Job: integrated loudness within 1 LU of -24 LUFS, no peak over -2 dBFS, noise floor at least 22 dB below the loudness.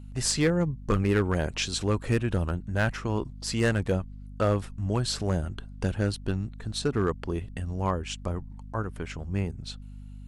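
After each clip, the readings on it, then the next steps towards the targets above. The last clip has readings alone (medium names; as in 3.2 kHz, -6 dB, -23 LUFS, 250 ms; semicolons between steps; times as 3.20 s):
clipped samples 0.4%; clipping level -16.0 dBFS; hum 50 Hz; highest harmonic 250 Hz; hum level -38 dBFS; loudness -29.0 LUFS; peak level -16.0 dBFS; loudness target -24.0 LUFS
-> clip repair -16 dBFS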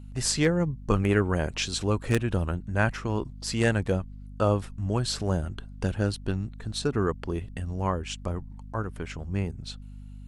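clipped samples 0.0%; hum 50 Hz; highest harmonic 250 Hz; hum level -38 dBFS
-> hum notches 50/100/150/200/250 Hz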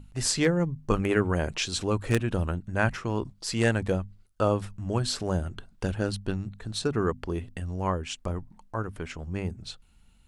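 hum not found; loudness -29.0 LUFS; peak level -7.5 dBFS; loudness target -24.0 LUFS
-> trim +5 dB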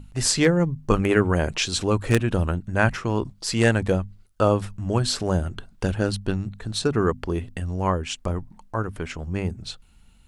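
loudness -24.0 LUFS; peak level -2.5 dBFS; noise floor -54 dBFS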